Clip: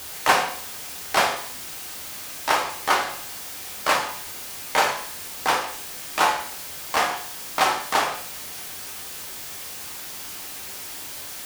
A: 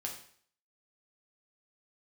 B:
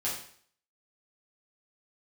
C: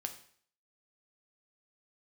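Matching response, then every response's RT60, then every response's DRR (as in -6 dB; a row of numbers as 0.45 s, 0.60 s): A; 0.55 s, 0.55 s, 0.55 s; -0.5 dB, -8.0 dB, 5.5 dB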